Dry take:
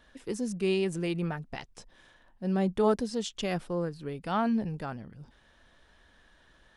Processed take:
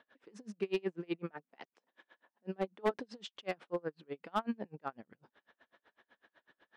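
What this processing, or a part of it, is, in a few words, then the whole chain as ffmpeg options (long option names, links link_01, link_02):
helicopter radio: -filter_complex "[0:a]asettb=1/sr,asplit=3[link_01][link_02][link_03];[link_01]atrim=end=1.294[link_04];[link_02]atrim=start=1.29:end=2.91,asetpts=PTS-STARTPTS,afade=type=in:duration=0.004:curve=qsin,afade=type=out:start_time=1.616:duration=0.004:curve=qsin,highpass=frequency=180:width=0.5412,highpass=frequency=180:width=1.3066[link_05];[link_03]atrim=start=2.906[link_06];[link_04][link_05]acrossfade=duration=0.004:curve1=hsin:curve2=qsin[link_07];[link_07][link_06]acrossfade=duration=0.004:curve1=qsin:curve2=hsin,highpass=300,lowpass=2700,aeval=exprs='val(0)*pow(10,-35*(0.5-0.5*cos(2*PI*8*n/s))/20)':channel_layout=same,asoftclip=type=hard:threshold=-26.5dB,volume=2dB"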